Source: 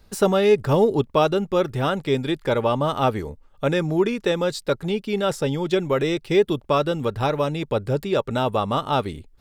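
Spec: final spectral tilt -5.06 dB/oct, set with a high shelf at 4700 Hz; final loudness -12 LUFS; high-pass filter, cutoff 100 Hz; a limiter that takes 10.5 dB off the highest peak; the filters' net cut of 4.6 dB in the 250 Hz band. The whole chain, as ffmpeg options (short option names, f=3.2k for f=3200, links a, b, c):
-af "highpass=100,equalizer=f=250:t=o:g=-7,highshelf=f=4.7k:g=4,volume=14.5dB,alimiter=limit=-1dB:level=0:latency=1"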